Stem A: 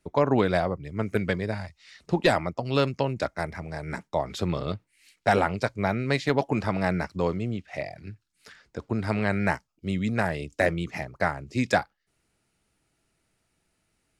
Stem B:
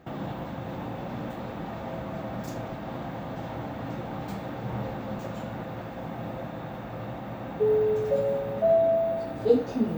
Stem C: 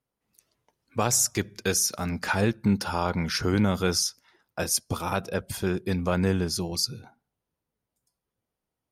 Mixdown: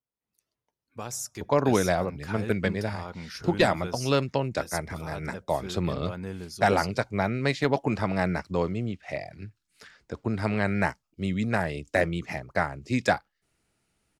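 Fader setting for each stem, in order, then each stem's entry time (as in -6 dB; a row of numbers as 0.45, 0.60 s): -0.5 dB, off, -12.0 dB; 1.35 s, off, 0.00 s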